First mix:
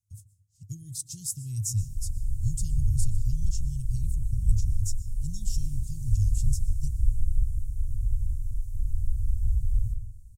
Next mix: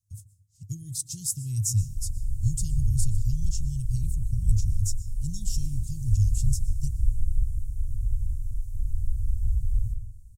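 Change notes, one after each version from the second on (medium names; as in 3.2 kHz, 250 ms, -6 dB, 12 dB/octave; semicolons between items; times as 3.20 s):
speech +3.5 dB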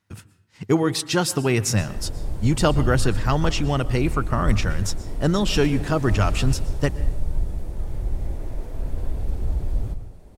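master: remove elliptic band-stop 110–6900 Hz, stop band 80 dB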